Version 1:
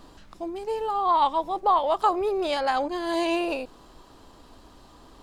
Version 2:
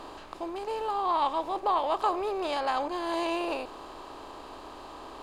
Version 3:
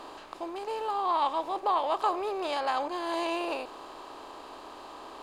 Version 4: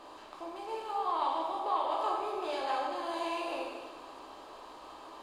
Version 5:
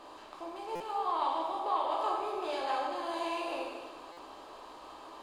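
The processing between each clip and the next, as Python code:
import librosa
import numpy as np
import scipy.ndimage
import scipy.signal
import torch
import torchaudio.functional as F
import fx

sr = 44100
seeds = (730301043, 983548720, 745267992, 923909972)

y1 = fx.bin_compress(x, sr, power=0.6)
y1 = y1 * librosa.db_to_amplitude(-7.5)
y2 = fx.low_shelf(y1, sr, hz=160.0, db=-11.5)
y3 = fx.rev_plate(y2, sr, seeds[0], rt60_s=1.4, hf_ratio=1.0, predelay_ms=0, drr_db=-2.5)
y3 = y3 * librosa.db_to_amplitude(-8.5)
y4 = fx.buffer_glitch(y3, sr, at_s=(0.75, 4.12), block=256, repeats=8)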